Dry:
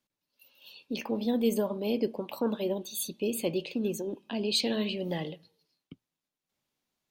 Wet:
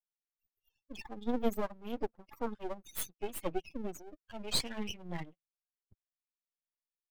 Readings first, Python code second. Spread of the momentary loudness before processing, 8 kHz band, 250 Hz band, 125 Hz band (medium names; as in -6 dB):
9 LU, -4.5 dB, -9.5 dB, -8.5 dB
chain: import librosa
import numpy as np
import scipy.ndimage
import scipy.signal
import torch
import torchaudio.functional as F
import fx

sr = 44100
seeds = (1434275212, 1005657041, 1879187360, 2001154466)

y = fx.bin_expand(x, sr, power=3.0)
y = np.maximum(y, 0.0)
y = y * 10.0 ** (3.5 / 20.0)